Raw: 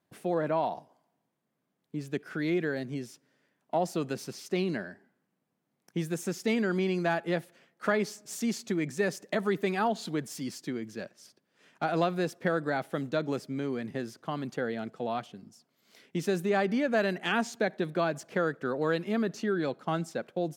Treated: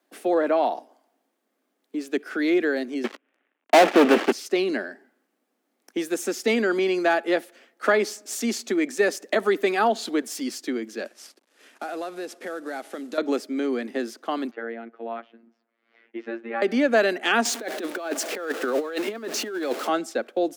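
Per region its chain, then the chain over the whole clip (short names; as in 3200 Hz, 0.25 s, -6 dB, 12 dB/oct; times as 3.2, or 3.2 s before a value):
3.04–4.32 CVSD 16 kbps + HPF 71 Hz + sample leveller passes 5
11.05–13.18 CVSD 64 kbps + compressor 3:1, threshold -39 dBFS
14.51–16.62 robotiser 115 Hz + ladder low-pass 2600 Hz, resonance 30%
17.45–19.89 zero-crossing step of -40.5 dBFS + negative-ratio compressor -32 dBFS, ratio -0.5 + HPF 250 Hz
whole clip: steep high-pass 240 Hz 48 dB/oct; notch 980 Hz, Q 11; gain +8 dB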